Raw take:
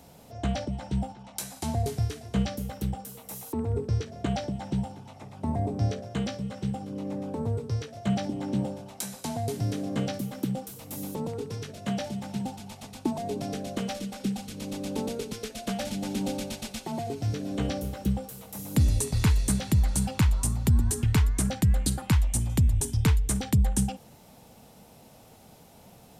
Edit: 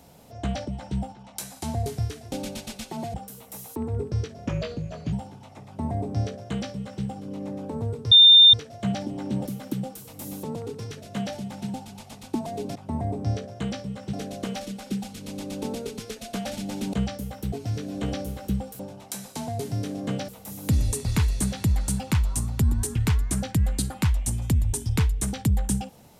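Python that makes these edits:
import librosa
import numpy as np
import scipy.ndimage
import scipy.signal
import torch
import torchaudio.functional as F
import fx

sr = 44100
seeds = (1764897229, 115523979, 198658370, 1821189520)

y = fx.edit(x, sr, fx.swap(start_s=2.32, length_s=0.59, other_s=16.27, other_length_s=0.82),
    fx.speed_span(start_s=4.24, length_s=0.53, speed=0.81),
    fx.duplicate(start_s=5.3, length_s=1.38, to_s=13.47),
    fx.insert_tone(at_s=7.76, length_s=0.42, hz=3610.0, db=-8.5),
    fx.move(start_s=8.68, length_s=1.49, to_s=18.36), tone=tone)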